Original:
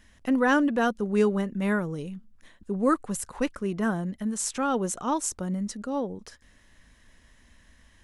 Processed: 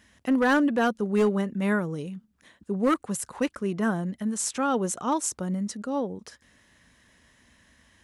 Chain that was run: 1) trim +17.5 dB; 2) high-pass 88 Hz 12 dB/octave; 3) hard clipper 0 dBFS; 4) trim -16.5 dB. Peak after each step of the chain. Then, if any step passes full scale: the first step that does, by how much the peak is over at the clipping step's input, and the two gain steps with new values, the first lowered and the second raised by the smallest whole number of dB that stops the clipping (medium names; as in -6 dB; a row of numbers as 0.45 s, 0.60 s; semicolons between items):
+6.5 dBFS, +6.0 dBFS, 0.0 dBFS, -16.5 dBFS; step 1, 6.0 dB; step 1 +11.5 dB, step 4 -10.5 dB